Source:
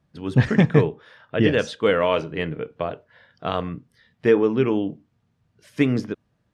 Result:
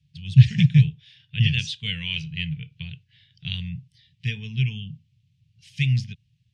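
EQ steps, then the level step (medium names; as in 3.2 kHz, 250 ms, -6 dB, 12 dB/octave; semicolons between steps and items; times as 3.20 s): high-pass 76 Hz; elliptic band-stop 140–2700 Hz, stop band 40 dB; distance through air 77 m; +7.5 dB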